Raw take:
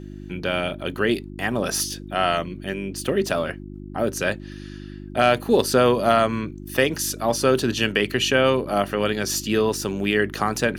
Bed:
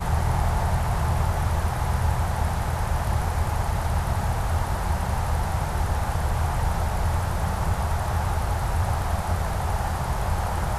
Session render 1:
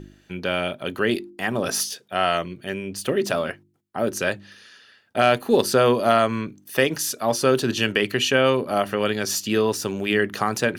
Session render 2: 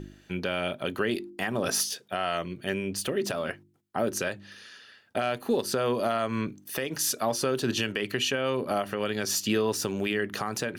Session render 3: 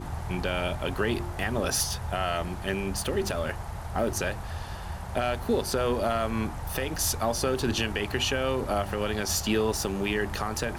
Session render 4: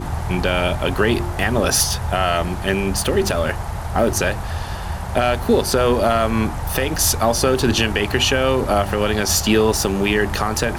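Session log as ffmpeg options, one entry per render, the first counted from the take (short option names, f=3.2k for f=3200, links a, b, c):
-af "bandreject=f=50:t=h:w=4,bandreject=f=100:t=h:w=4,bandreject=f=150:t=h:w=4,bandreject=f=200:t=h:w=4,bandreject=f=250:t=h:w=4,bandreject=f=300:t=h:w=4,bandreject=f=350:t=h:w=4"
-af "acompressor=threshold=-21dB:ratio=2.5,alimiter=limit=-15.5dB:level=0:latency=1:release=299"
-filter_complex "[1:a]volume=-11.5dB[a];[0:a][a]amix=inputs=2:normalize=0"
-af "volume=10dB"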